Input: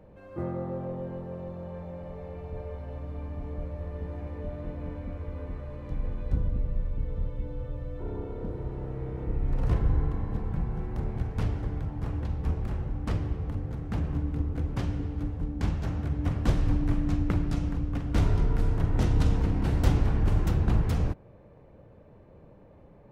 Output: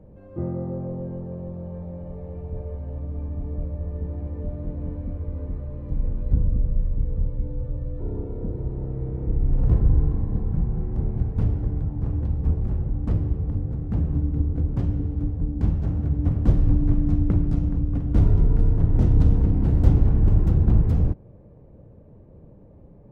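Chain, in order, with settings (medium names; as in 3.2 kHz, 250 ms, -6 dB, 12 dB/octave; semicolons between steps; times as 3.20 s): tilt shelf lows +9.5 dB, about 770 Hz; trim -2.5 dB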